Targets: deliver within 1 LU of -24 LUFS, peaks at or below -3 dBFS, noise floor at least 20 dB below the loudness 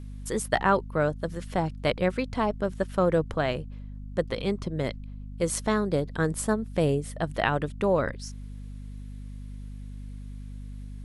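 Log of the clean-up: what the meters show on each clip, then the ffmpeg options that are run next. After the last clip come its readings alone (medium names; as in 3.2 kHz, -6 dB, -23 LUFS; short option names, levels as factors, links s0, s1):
hum 50 Hz; highest harmonic 250 Hz; hum level -36 dBFS; loudness -28.0 LUFS; peak level -7.5 dBFS; loudness target -24.0 LUFS
-> -af "bandreject=f=50:t=h:w=4,bandreject=f=100:t=h:w=4,bandreject=f=150:t=h:w=4,bandreject=f=200:t=h:w=4,bandreject=f=250:t=h:w=4"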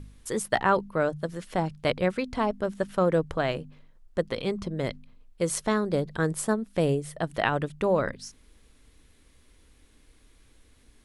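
hum not found; loudness -28.0 LUFS; peak level -8.0 dBFS; loudness target -24.0 LUFS
-> -af "volume=1.58"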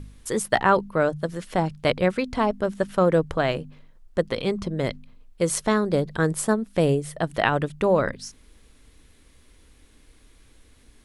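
loudness -24.0 LUFS; peak level -4.5 dBFS; noise floor -55 dBFS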